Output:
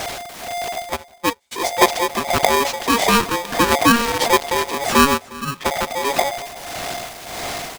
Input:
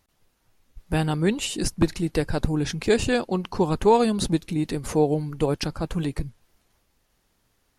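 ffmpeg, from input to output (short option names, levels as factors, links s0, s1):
-filter_complex "[0:a]aeval=exprs='val(0)+0.5*0.0335*sgn(val(0))':c=same,bandreject=f=50:t=h:w=6,bandreject=f=100:t=h:w=6,bandreject=f=150:t=h:w=6,bandreject=f=200:t=h:w=6,bandreject=f=250:t=h:w=6,asplit=3[s0][s1][s2];[s0]afade=t=out:st=0.95:d=0.02[s3];[s1]agate=range=0.00501:threshold=0.141:ratio=16:detection=peak,afade=t=in:st=0.95:d=0.02,afade=t=out:st=1.51:d=0.02[s4];[s2]afade=t=in:st=1.51:d=0.02[s5];[s3][s4][s5]amix=inputs=3:normalize=0,tremolo=f=1.6:d=0.7,asplit=2[s6][s7];[s7]acompressor=threshold=0.0355:ratio=6,volume=1[s8];[s6][s8]amix=inputs=2:normalize=0,asettb=1/sr,asplit=3[s9][s10][s11];[s9]atrim=end=3.944[s12];[s10]atrim=start=3.94:end=4.63,asetpts=PTS-STARTPTS,afade=t=in:d=0.004:c=qsin,afade=t=out:st=0.686:d=0.004:c=qsin,acrusher=bits=5:dc=4:mix=0:aa=0.000001[s13];[s11]atrim=start=4.626[s14];[s12][s13]acrossfade=d=0.004:c1=hsin:c2=qsin[s15];[s15][s14]acrossfade=d=0.004:c1=qsin:c2=hsin,acrossover=split=7300[s16][s17];[s17]acompressor=threshold=0.00708:ratio=4:attack=1:release=60[s18];[s16][s18]amix=inputs=2:normalize=0,asplit=3[s19][s20][s21];[s19]afade=t=out:st=5.17:d=0.02[s22];[s20]asplit=3[s23][s24][s25];[s23]bandpass=f=530:t=q:w=8,volume=1[s26];[s24]bandpass=f=1840:t=q:w=8,volume=0.501[s27];[s25]bandpass=f=2480:t=q:w=8,volume=0.355[s28];[s26][s27][s28]amix=inputs=3:normalize=0,afade=t=in:st=5.17:d=0.02,afade=t=out:st=5.64:d=0.02[s29];[s21]afade=t=in:st=5.64:d=0.02[s30];[s22][s29][s30]amix=inputs=3:normalize=0,asplit=2[s31][s32];[s32]aecho=0:1:358:0.0841[s33];[s31][s33]amix=inputs=2:normalize=0,aeval=exprs='val(0)*sgn(sin(2*PI*700*n/s))':c=same,volume=1.68"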